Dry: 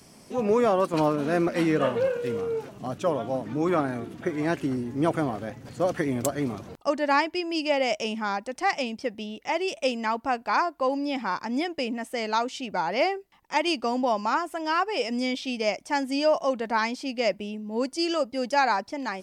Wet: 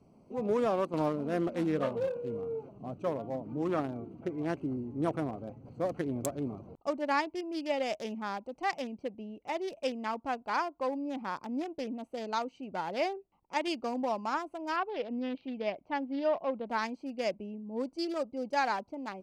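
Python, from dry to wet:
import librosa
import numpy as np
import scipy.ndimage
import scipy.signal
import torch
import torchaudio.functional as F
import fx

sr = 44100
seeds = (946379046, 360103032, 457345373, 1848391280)

y = fx.wiener(x, sr, points=25)
y = fx.lowpass(y, sr, hz=3800.0, slope=24, at=(14.76, 16.67))
y = y * 10.0 ** (-6.5 / 20.0)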